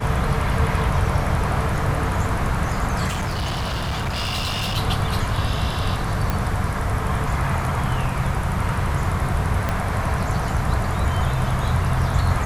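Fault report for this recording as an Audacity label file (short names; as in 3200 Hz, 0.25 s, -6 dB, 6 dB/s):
3.070000	4.780000	clipped -21 dBFS
6.300000	6.300000	pop
9.690000	9.690000	pop -9 dBFS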